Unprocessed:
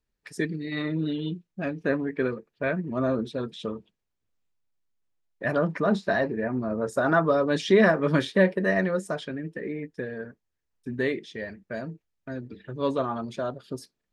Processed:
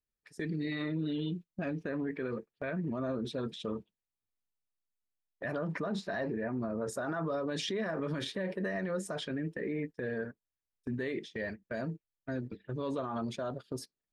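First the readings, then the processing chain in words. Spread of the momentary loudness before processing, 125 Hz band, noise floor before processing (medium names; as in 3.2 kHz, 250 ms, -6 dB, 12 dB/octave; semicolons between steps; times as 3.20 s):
16 LU, -7.0 dB, -81 dBFS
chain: gate -40 dBFS, range -13 dB; in parallel at -2.5 dB: compressor with a negative ratio -34 dBFS, ratio -1; on the sum: peak limiter -18.5 dBFS, peak gain reduction 11.5 dB; trim -8 dB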